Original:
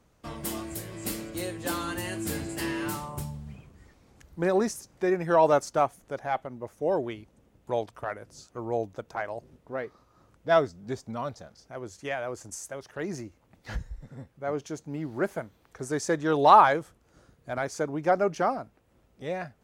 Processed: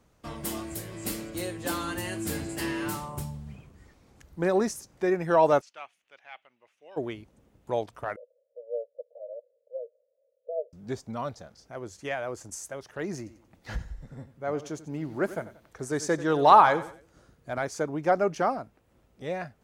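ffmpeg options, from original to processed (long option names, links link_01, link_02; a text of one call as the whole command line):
ffmpeg -i in.wav -filter_complex "[0:a]asplit=3[link_01][link_02][link_03];[link_01]afade=type=out:start_time=5.6:duration=0.02[link_04];[link_02]bandpass=frequency=2700:width_type=q:width=3.4,afade=type=in:start_time=5.6:duration=0.02,afade=type=out:start_time=6.96:duration=0.02[link_05];[link_03]afade=type=in:start_time=6.96:duration=0.02[link_06];[link_04][link_05][link_06]amix=inputs=3:normalize=0,asettb=1/sr,asplit=3[link_07][link_08][link_09];[link_07]atrim=end=8.164[link_10];[link_08]atrim=start=8.16:end=10.73,asetpts=PTS-STARTPTS,afade=type=in:duration=0.004:curve=qsin,afade=type=out:start_time=2.566:duration=0.004:curve=qsin,asuperpass=centerf=540:order=8:qfactor=3.6[link_11];[link_09]atrim=start=10.726[link_12];[link_10][link_11]acrossfade=duration=0.004:curve1=hsin:curve2=qsin[link_13];[link_13][link_12]acrossfade=duration=0.004:curve1=qsin:curve2=hsin,asettb=1/sr,asplit=3[link_14][link_15][link_16];[link_14]atrim=end=13.174[link_17];[link_15]atrim=start=13.17:end=17.56,asetpts=PTS-STARTPTS,afade=type=in:duration=0.004:curve=qsin,afade=type=out:start_time=4.386:duration=0.004:curve=qsin,aecho=1:1:91|182|273:0.178|0.0676|0.0257,atrim=end_sample=193599[link_18];[link_16]atrim=start=17.556[link_19];[link_17][link_18]acrossfade=duration=0.004:curve1=hsin:curve2=qsin[link_20];[link_20][link_19]acrossfade=duration=0.004:curve1=qsin:curve2=hsin" out.wav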